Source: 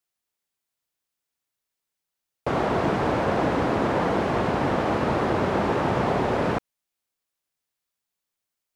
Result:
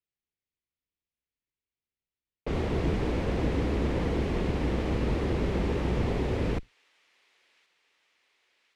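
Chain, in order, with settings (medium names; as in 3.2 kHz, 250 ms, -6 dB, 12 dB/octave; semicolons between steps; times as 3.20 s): octave divider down 2 oct, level +3 dB; level-controlled noise filter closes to 2.8 kHz, open at -19 dBFS; high-order bell 980 Hz -9 dB; feedback echo behind a high-pass 1075 ms, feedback 64%, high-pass 2.2 kHz, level -22.5 dB; trim -5 dB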